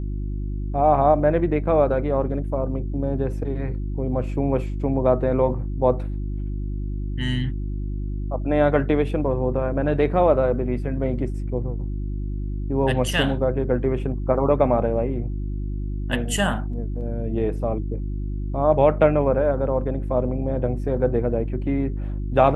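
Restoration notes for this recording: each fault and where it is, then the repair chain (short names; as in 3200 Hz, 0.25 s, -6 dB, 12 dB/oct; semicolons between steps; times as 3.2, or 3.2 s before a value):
hum 50 Hz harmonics 7 -27 dBFS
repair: de-hum 50 Hz, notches 7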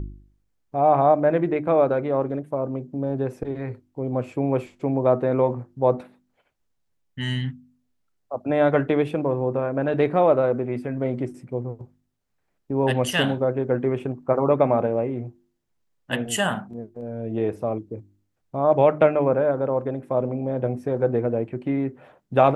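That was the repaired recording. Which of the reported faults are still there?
none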